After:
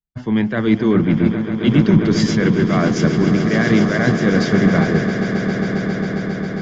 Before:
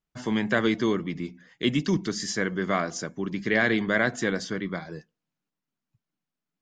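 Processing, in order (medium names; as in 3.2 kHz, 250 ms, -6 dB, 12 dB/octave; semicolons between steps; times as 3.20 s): reverse; compression 6:1, threshold -33 dBFS, peak gain reduction 14.5 dB; reverse; low-pass 3.9 kHz 12 dB/octave; bass shelf 280 Hz +10.5 dB; echo with a slow build-up 135 ms, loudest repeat 8, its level -11 dB; loudness maximiser +17 dB; three bands expanded up and down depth 70%; trim -2 dB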